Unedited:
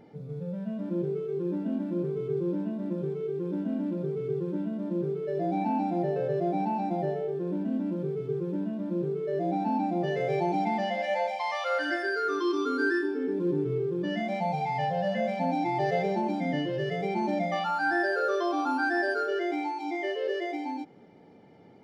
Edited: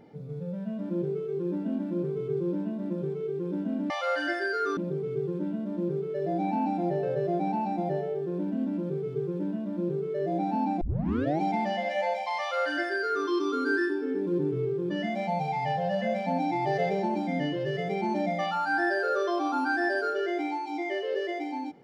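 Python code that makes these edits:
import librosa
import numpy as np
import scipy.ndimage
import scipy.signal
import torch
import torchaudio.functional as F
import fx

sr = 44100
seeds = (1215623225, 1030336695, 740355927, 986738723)

y = fx.edit(x, sr, fx.tape_start(start_s=9.94, length_s=0.6),
    fx.duplicate(start_s=11.53, length_s=0.87, to_s=3.9), tone=tone)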